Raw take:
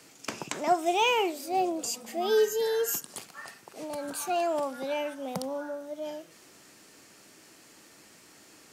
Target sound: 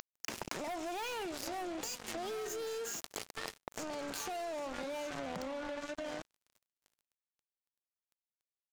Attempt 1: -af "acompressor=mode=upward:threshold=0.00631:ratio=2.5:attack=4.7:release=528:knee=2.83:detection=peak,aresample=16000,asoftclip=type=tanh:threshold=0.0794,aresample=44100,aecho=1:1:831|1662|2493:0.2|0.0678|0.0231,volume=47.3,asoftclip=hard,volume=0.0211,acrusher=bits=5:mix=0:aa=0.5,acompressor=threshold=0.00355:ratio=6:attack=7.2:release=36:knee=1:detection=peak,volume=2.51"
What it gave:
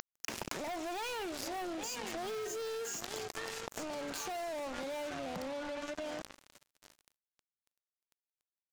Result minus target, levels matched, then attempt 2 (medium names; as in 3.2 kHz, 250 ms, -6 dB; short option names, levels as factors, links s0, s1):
saturation: distortion -9 dB
-af "acompressor=mode=upward:threshold=0.00631:ratio=2.5:attack=4.7:release=528:knee=2.83:detection=peak,aresample=16000,asoftclip=type=tanh:threshold=0.0211,aresample=44100,aecho=1:1:831|1662|2493:0.2|0.0678|0.0231,volume=47.3,asoftclip=hard,volume=0.0211,acrusher=bits=5:mix=0:aa=0.5,acompressor=threshold=0.00355:ratio=6:attack=7.2:release=36:knee=1:detection=peak,volume=2.51"